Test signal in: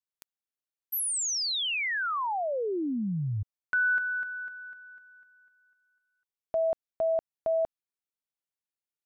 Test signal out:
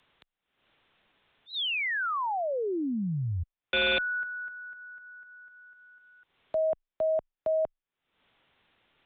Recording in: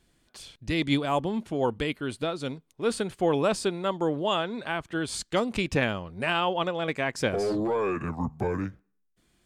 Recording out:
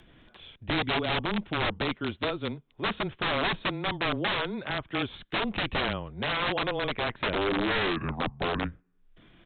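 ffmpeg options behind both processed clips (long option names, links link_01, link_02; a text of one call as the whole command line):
ffmpeg -i in.wav -af "aresample=8000,aeval=exprs='(mod(12.6*val(0)+1,2)-1)/12.6':channel_layout=same,aresample=44100,afreqshift=-17,acompressor=mode=upward:threshold=-40dB:ratio=2.5:attack=0.18:release=275:knee=2.83:detection=peak" out.wav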